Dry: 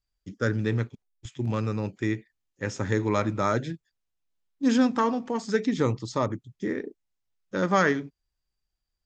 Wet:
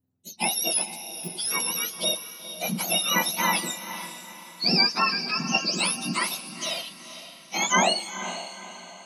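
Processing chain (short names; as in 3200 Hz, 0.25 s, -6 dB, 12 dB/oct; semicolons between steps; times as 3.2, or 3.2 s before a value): spectrum mirrored in octaves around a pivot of 1100 Hz; high shelf 5900 Hz +4 dB; diffused feedback echo 0.476 s, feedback 41%, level -11.5 dB; gain +4 dB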